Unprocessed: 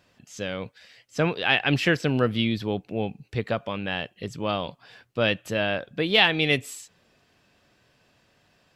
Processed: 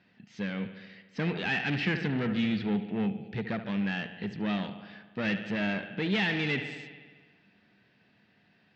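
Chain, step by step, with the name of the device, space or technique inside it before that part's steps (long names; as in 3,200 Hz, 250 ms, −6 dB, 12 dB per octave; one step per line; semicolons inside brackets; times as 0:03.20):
analogue delay pedal into a guitar amplifier (bucket-brigade delay 72 ms, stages 2,048, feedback 70%, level −14.5 dB; tube saturation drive 26 dB, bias 0.5; loudspeaker in its box 110–4,100 Hz, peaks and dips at 200 Hz +10 dB, 560 Hz −8 dB, 1,100 Hz −8 dB, 1,900 Hz +5 dB, 3,300 Hz −3 dB)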